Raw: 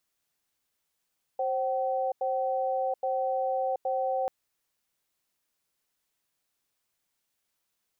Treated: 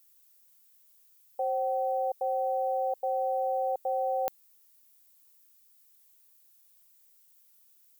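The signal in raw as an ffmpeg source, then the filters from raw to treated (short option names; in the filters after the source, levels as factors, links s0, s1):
-f lavfi -i "aevalsrc='0.0376*(sin(2*PI*529*t)+sin(2*PI*764*t))*clip(min(mod(t,0.82),0.73-mod(t,0.82))/0.005,0,1)':d=2.89:s=44100"
-af "aemphasis=mode=production:type=75fm"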